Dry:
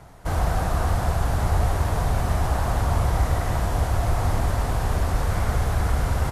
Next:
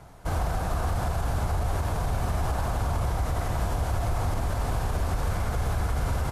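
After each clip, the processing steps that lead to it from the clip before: band-stop 1.9 kHz, Q 16; peak limiter -16.5 dBFS, peak gain reduction 6 dB; trim -2 dB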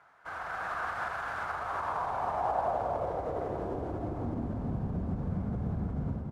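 level rider gain up to 6.5 dB; band-pass sweep 1.5 kHz -> 200 Hz, 1.40–4.77 s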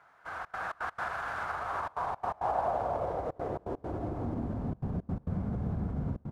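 trance gate "xxxxx.xx.x.xxxxx" 168 bpm -24 dB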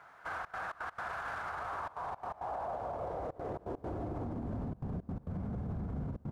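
compression 2:1, threshold -37 dBFS, peak gain reduction 7 dB; peak limiter -35.5 dBFS, peak gain reduction 10 dB; trim +4.5 dB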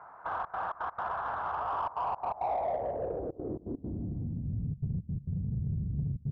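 low-pass sweep 1 kHz -> 140 Hz, 2.18–4.47 s; in parallel at -4 dB: saturation -33 dBFS, distortion -13 dB; on the sum: trim -1.5 dB

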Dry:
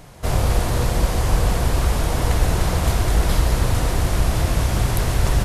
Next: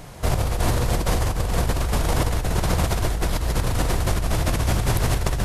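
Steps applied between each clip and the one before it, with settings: compressor with a negative ratio -21 dBFS, ratio -1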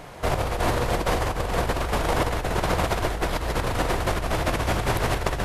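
tone controls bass -9 dB, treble -9 dB; trim +3 dB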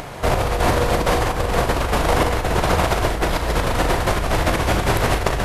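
upward compressor, threshold -33 dBFS; on a send: flutter echo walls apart 6.4 m, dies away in 0.24 s; on the sum: trim +5 dB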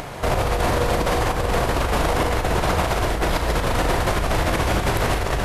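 peak limiter -10.5 dBFS, peak gain reduction 8.5 dB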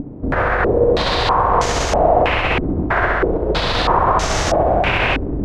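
wow and flutter 25 cents; thinning echo 65 ms, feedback 83%, high-pass 310 Hz, level -4 dB; step-sequenced low-pass 3.1 Hz 280–6300 Hz

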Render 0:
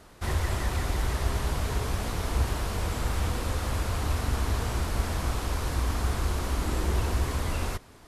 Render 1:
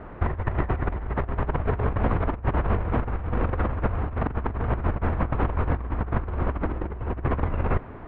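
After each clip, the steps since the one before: Bessel low-pass 1.4 kHz, order 6; compressor with a negative ratio -32 dBFS, ratio -0.5; trim +8 dB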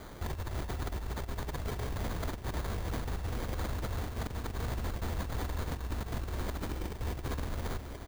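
peak limiter -20.5 dBFS, peak gain reduction 11 dB; echo from a far wall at 250 m, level -9 dB; sample-rate reducer 2.7 kHz, jitter 0%; trim -6.5 dB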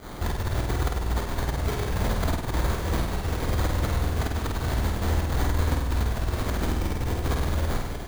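volume shaper 98 bpm, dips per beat 2, -14 dB, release 79 ms; on a send: flutter echo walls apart 8.6 m, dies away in 0.78 s; on the sum: trim +8 dB

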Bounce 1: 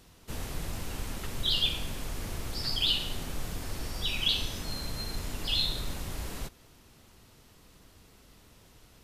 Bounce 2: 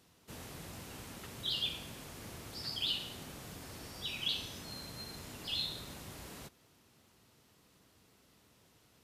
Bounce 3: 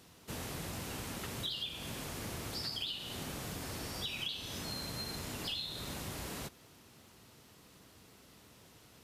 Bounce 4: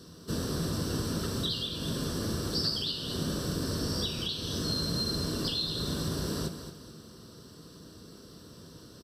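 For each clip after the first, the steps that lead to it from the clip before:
high-pass 100 Hz 12 dB/octave; trim -7.5 dB
compression 12:1, threshold -43 dBFS, peak gain reduction 13.5 dB; trim +7 dB
feedback delay 219 ms, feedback 36%, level -10 dB; reverberation RT60 0.45 s, pre-delay 3 ms, DRR 8 dB

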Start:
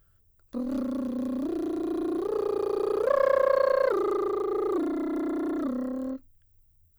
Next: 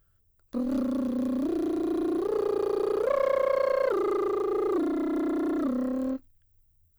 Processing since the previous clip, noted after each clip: waveshaping leveller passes 1; in parallel at -1.5 dB: gain riding; on the sum: trim -8 dB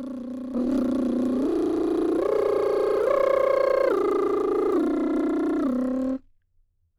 level-controlled noise filter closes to 1.1 kHz, open at -23.5 dBFS; spectral noise reduction 8 dB; reverse echo 884 ms -8.5 dB; trim +3.5 dB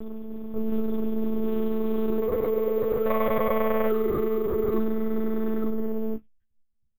monotone LPC vocoder at 8 kHz 220 Hz; doubling 14 ms -8 dB; careless resampling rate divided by 3×, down filtered, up hold; trim -3 dB

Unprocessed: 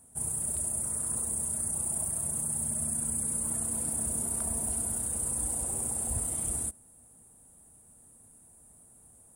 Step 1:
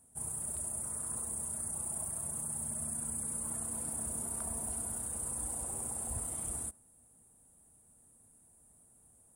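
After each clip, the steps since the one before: dynamic bell 1.1 kHz, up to +5 dB, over -57 dBFS, Q 0.94; trim -6.5 dB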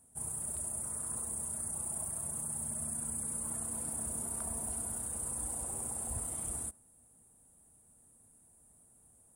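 no audible change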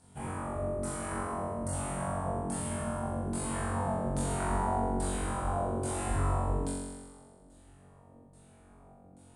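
LFO low-pass saw down 1.2 Hz 300–4800 Hz; flutter echo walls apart 3.7 m, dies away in 1.4 s; trim +7.5 dB

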